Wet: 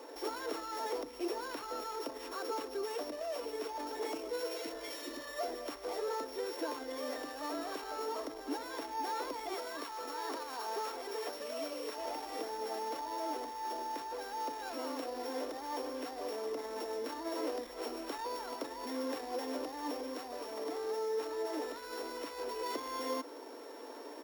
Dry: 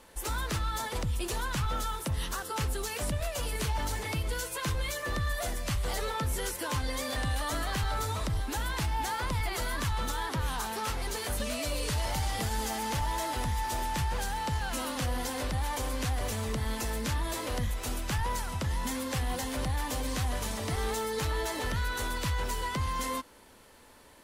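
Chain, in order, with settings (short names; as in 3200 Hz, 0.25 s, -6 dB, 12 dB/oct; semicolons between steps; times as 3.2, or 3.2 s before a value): sample sorter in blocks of 8 samples; comb 4.4 ms, depth 34%; limiter -33.5 dBFS, peak gain reduction 12 dB; elliptic high-pass 300 Hz, stop band 40 dB; tilt shelf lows +8.5 dB, about 720 Hz; 4.53–5.3 spectral repair 380–1800 Hz both; 9.54–11.98 low shelf 390 Hz -8 dB; vocal rider within 5 dB 2 s; gain +6.5 dB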